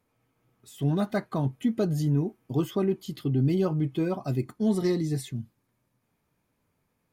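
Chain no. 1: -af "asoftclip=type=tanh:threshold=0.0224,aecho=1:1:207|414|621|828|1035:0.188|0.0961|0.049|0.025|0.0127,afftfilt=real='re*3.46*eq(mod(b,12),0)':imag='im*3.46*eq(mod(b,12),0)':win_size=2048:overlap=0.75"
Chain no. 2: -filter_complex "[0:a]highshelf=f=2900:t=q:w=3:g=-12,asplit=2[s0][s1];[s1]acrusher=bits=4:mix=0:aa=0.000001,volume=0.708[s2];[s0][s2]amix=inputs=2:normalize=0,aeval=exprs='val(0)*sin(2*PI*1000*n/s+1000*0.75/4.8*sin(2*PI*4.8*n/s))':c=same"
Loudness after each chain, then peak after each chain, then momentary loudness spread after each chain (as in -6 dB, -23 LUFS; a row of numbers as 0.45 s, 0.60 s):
-43.0 LUFS, -25.0 LUFS; -24.5 dBFS, -10.5 dBFS; 11 LU, 6 LU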